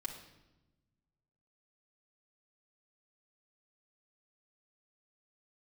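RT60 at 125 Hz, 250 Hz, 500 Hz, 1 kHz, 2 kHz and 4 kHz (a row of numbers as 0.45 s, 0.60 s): 2.0 s, 1.7 s, 1.1 s, 0.90 s, 0.85 s, 0.85 s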